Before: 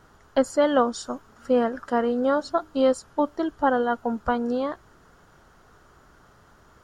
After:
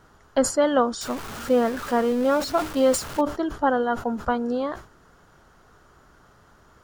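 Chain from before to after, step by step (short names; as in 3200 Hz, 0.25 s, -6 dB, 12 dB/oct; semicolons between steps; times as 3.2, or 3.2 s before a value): 1.01–3.21 zero-crossing step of -30.5 dBFS; sustainer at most 140 dB/s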